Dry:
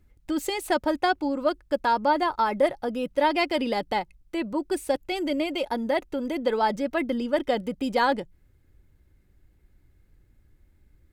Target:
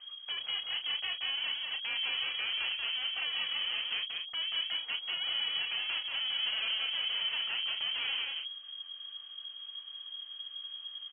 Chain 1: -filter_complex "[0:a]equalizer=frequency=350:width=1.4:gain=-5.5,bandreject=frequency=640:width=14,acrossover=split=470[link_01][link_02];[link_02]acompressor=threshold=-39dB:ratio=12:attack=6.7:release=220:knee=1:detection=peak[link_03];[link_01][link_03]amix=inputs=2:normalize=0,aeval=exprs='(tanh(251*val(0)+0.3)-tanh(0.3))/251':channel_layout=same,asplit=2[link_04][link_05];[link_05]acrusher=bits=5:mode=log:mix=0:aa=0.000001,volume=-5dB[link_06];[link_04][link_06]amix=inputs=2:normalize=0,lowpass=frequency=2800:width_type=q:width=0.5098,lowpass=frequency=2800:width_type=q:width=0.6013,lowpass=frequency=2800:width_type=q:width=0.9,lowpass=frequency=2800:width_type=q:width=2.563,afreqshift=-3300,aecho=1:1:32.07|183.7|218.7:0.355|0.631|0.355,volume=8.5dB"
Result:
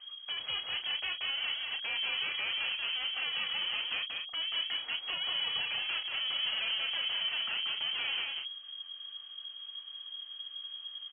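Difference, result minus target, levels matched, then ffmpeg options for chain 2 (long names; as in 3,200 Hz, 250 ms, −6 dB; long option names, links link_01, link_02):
downward compressor: peak gain reduction −9 dB
-filter_complex "[0:a]equalizer=frequency=350:width=1.4:gain=-5.5,bandreject=frequency=640:width=14,acrossover=split=470[link_01][link_02];[link_02]acompressor=threshold=-49dB:ratio=12:attack=6.7:release=220:knee=1:detection=peak[link_03];[link_01][link_03]amix=inputs=2:normalize=0,aeval=exprs='(tanh(251*val(0)+0.3)-tanh(0.3))/251':channel_layout=same,asplit=2[link_04][link_05];[link_05]acrusher=bits=5:mode=log:mix=0:aa=0.000001,volume=-5dB[link_06];[link_04][link_06]amix=inputs=2:normalize=0,lowpass=frequency=2800:width_type=q:width=0.5098,lowpass=frequency=2800:width_type=q:width=0.6013,lowpass=frequency=2800:width_type=q:width=0.9,lowpass=frequency=2800:width_type=q:width=2.563,afreqshift=-3300,aecho=1:1:32.07|183.7|218.7:0.355|0.631|0.355,volume=8.5dB"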